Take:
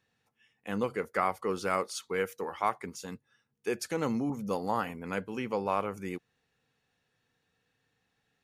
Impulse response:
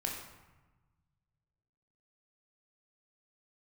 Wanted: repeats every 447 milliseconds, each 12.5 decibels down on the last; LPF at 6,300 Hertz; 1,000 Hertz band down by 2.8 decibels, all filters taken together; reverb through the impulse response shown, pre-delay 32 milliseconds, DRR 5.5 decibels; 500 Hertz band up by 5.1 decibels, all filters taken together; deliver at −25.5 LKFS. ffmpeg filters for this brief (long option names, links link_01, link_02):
-filter_complex "[0:a]lowpass=6300,equalizer=frequency=500:width_type=o:gain=7,equalizer=frequency=1000:width_type=o:gain=-6,aecho=1:1:447|894|1341:0.237|0.0569|0.0137,asplit=2[link_01][link_02];[1:a]atrim=start_sample=2205,adelay=32[link_03];[link_02][link_03]afir=irnorm=-1:irlink=0,volume=-8dB[link_04];[link_01][link_04]amix=inputs=2:normalize=0,volume=4.5dB"